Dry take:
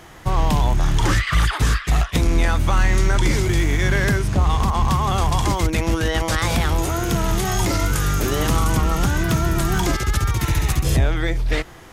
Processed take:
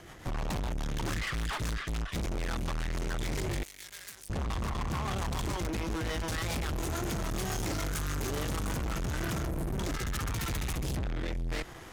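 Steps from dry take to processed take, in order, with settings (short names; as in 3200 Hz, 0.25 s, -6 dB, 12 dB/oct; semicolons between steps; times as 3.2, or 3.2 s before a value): rotary speaker horn 7 Hz, later 0.7 Hz, at 8.46; 9.47–9.79 spectral gain 740–8000 Hz -9 dB; tube stage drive 31 dB, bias 0.7; 3.63–4.3 pre-emphasis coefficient 0.97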